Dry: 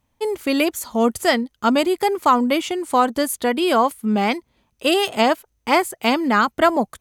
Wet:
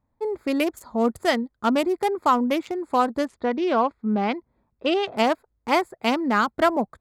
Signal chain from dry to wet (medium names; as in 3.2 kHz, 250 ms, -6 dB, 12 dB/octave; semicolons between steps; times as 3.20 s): local Wiener filter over 15 samples; 3.25–5.17 s: Bessel low-pass 3.6 kHz, order 4; trim -3.5 dB